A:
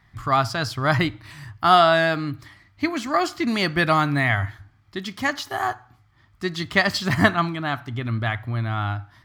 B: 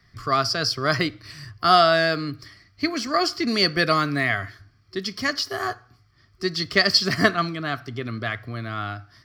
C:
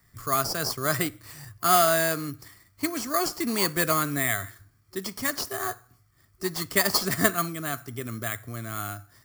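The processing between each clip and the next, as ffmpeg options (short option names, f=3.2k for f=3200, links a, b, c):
-filter_complex "[0:a]superequalizer=7b=2:9b=0.282:14b=3.55,acrossover=split=160|1500|3200[a][b][c][d];[a]acompressor=threshold=-38dB:ratio=6[e];[e][b][c][d]amix=inputs=4:normalize=0,volume=-1dB"
-filter_complex "[0:a]asplit=2[a][b];[b]acrusher=samples=8:mix=1:aa=0.000001,volume=-5.5dB[c];[a][c]amix=inputs=2:normalize=0,aexciter=amount=4.6:drive=7.1:freq=6.7k,volume=-8dB"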